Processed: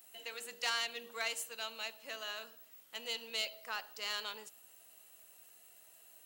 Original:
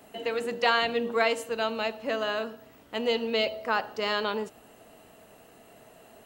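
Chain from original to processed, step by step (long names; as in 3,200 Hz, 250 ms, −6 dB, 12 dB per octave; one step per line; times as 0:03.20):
stylus tracing distortion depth 0.025 ms
first-order pre-emphasis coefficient 0.97
level +1 dB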